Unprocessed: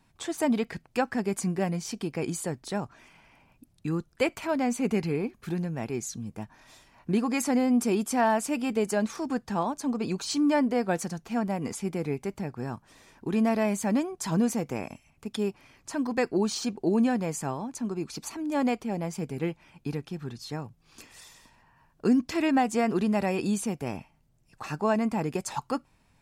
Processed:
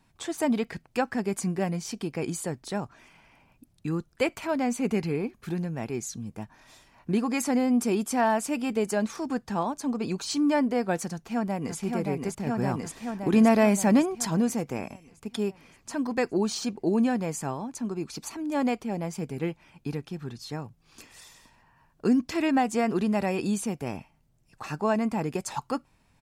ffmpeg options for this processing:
ffmpeg -i in.wav -filter_complex "[0:a]asplit=2[link_01][link_02];[link_02]afade=type=in:start_time=11.11:duration=0.01,afade=type=out:start_time=11.77:duration=0.01,aecho=0:1:570|1140|1710|2280|2850|3420|3990|4560|5130|5700:0.668344|0.434424|0.282375|0.183544|0.119304|0.0775473|0.0504058|0.0327637|0.0212964|0.0138427[link_03];[link_01][link_03]amix=inputs=2:normalize=0,asplit=3[link_04][link_05][link_06];[link_04]atrim=end=12.472[link_07];[link_05]atrim=start=12.468:end=14.252,asetpts=PTS-STARTPTS,volume=5.5dB[link_08];[link_06]atrim=start=14.248[link_09];[link_07][link_08]acrossfade=duration=0.004:curve1=hsin:curve2=hsin[link_10];[link_10][link_09]acrossfade=duration=0.004:curve1=hsin:curve2=hsin" out.wav

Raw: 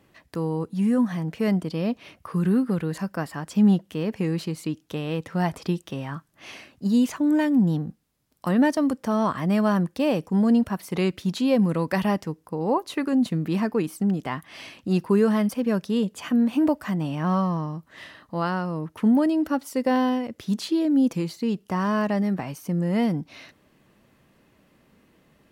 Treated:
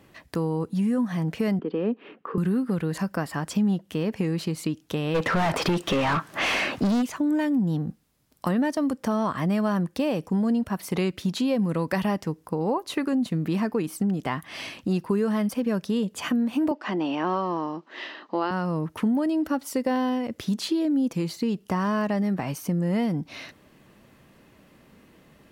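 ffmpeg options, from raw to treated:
ffmpeg -i in.wav -filter_complex "[0:a]asettb=1/sr,asplit=3[link_01][link_02][link_03];[link_01]atrim=end=1.594[link_04];[link_02]atrim=start=1.59:end=2.38,asetpts=PTS-STARTPTS,afade=type=in:duration=0.004:curve=qsin,afade=type=out:start_time=0.786:duration=0.004:curve=qsin,highpass=frequency=220:width=0.5412,highpass=frequency=220:width=1.3066,equalizer=frequency=230:width_type=q:width=4:gain=4,equalizer=frequency=430:width_type=q:width=4:gain=10,equalizer=frequency=640:width_type=q:width=4:gain=-9,equalizer=frequency=1000:width_type=q:width=4:gain=-3,equalizer=frequency=2200:width_type=q:width=4:gain=-8,lowpass=frequency=2600:width=0.5412,lowpass=frequency=2600:width=1.3066[link_05];[link_03]atrim=start=2.376[link_06];[link_04][link_05]acrossfade=duration=0.004:curve1=hsin:curve2=qsin[link_07];[link_07][link_06]acrossfade=duration=0.004:curve1=qsin:curve2=hsin,asplit=3[link_08][link_09][link_10];[link_08]afade=type=out:start_time=5.14:duration=0.02[link_11];[link_09]asplit=2[link_12][link_13];[link_13]highpass=frequency=720:poles=1,volume=35dB,asoftclip=type=tanh:threshold=-11.5dB[link_14];[link_12][link_14]amix=inputs=2:normalize=0,lowpass=frequency=1700:poles=1,volume=-6dB,afade=type=in:start_time=5.14:duration=0.02,afade=type=out:start_time=7.01:duration=0.02[link_15];[link_10]afade=type=in:start_time=7.01:duration=0.02[link_16];[link_11][link_15][link_16]amix=inputs=3:normalize=0,asettb=1/sr,asplit=3[link_17][link_18][link_19];[link_17]atrim=end=16.714[link_20];[link_18]atrim=start=16.71:end=18.51,asetpts=PTS-STARTPTS,afade=type=in:duration=0.004:curve=qsin,afade=type=out:start_time=1.796:duration=0.004:curve=qsin,highpass=frequency=250:width=0.5412,highpass=frequency=250:width=1.3066,equalizer=frequency=360:width_type=q:width=4:gain=8,equalizer=frequency=870:width_type=q:width=4:gain=4,equalizer=frequency=2800:width_type=q:width=4:gain=4,lowpass=frequency=5500:width=0.5412,lowpass=frequency=5500:width=1.3066[link_21];[link_19]atrim=start=18.506[link_22];[link_20][link_21]acrossfade=duration=0.004:curve1=hsin:curve2=qsin[link_23];[link_23][link_22]acrossfade=duration=0.004:curve1=qsin:curve2=hsin,acompressor=threshold=-29dB:ratio=3,volume=5dB" out.wav

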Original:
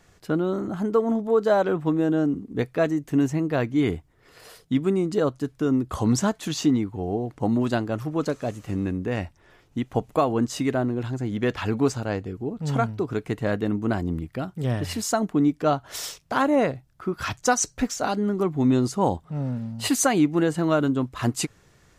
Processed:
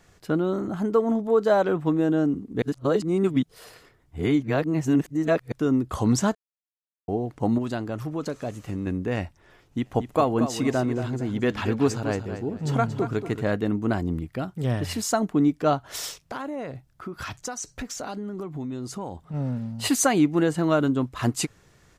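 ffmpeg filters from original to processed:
ffmpeg -i in.wav -filter_complex "[0:a]asettb=1/sr,asplit=3[link_01][link_02][link_03];[link_01]atrim=end=7.584[link_04];[link_02]atrim=start=7.58:end=8.87,asetpts=PTS-STARTPTS,afade=type=in:duration=0.004:curve=qsin,afade=type=out:start_time=1.286:duration=0.004:curve=qsin,acompressor=threshold=-28dB:ratio=2:attack=3.2:release=140:knee=1:detection=peak[link_05];[link_03]atrim=start=8.866[link_06];[link_04][link_05]acrossfade=duration=0.004:curve1=hsin:curve2=qsin[link_07];[link_07][link_06]acrossfade=duration=0.004:curve1=qsin:curve2=hsin,asplit=3[link_08][link_09][link_10];[link_08]afade=type=out:start_time=9.84:duration=0.02[link_11];[link_09]aecho=1:1:230|460|690:0.316|0.0822|0.0214,afade=type=in:start_time=9.84:duration=0.02,afade=type=out:start_time=13.41:duration=0.02[link_12];[link_10]afade=type=in:start_time=13.41:duration=0.02[link_13];[link_11][link_12][link_13]amix=inputs=3:normalize=0,asettb=1/sr,asplit=3[link_14][link_15][link_16];[link_14]atrim=end=16.244[link_17];[link_15]atrim=start=16.24:end=19.34,asetpts=PTS-STARTPTS,afade=type=in:duration=0.004:curve=qsin,afade=type=out:start_time=3.096:duration=0.004:curve=qsin,acompressor=threshold=-30dB:ratio=6:attack=3.2:release=140:knee=1:detection=peak[link_18];[link_16]atrim=start=19.336[link_19];[link_17][link_18]acrossfade=duration=0.004:curve1=hsin:curve2=qsin[link_20];[link_20][link_19]acrossfade=duration=0.004:curve1=qsin:curve2=hsin,asplit=5[link_21][link_22][link_23][link_24][link_25];[link_21]atrim=end=2.622[link_26];[link_22]atrim=start=2.618:end=5.522,asetpts=PTS-STARTPTS,areverse[link_27];[link_23]atrim=start=5.518:end=6.35,asetpts=PTS-STARTPTS,afade=type=out:start_time=0.828:duration=0.004:curve=hsin[link_28];[link_24]atrim=start=6.35:end=7.08,asetpts=PTS-STARTPTS,volume=0[link_29];[link_25]atrim=start=7.08,asetpts=PTS-STARTPTS,afade=type=in:duration=0.004:curve=hsin[link_30];[link_26][link_27]acrossfade=duration=0.004:curve1=hsin:curve2=hsin[link_31];[link_28][link_29][link_30]concat=n=3:v=0:a=1[link_32];[link_31][link_32]acrossfade=duration=0.004:curve1=hsin:curve2=hsin" out.wav

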